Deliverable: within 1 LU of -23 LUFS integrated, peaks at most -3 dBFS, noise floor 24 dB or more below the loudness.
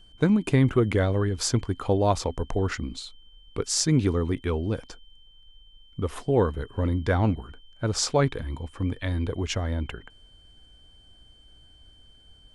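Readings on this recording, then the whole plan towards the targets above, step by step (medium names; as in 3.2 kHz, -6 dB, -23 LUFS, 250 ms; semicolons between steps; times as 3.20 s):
steady tone 3.1 kHz; tone level -55 dBFS; loudness -26.0 LUFS; peak level -7.0 dBFS; loudness target -23.0 LUFS
-> band-stop 3.1 kHz, Q 30; trim +3 dB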